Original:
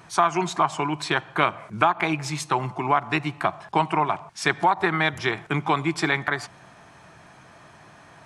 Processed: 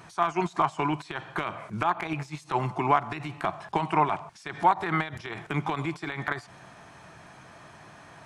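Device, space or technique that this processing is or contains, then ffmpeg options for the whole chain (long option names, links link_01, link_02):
de-esser from a sidechain: -filter_complex "[0:a]asplit=2[link_01][link_02];[link_02]highpass=frequency=4200:width=0.5412,highpass=frequency=4200:width=1.3066,apad=whole_len=363951[link_03];[link_01][link_03]sidechaincompress=threshold=-48dB:ratio=12:attack=0.99:release=45"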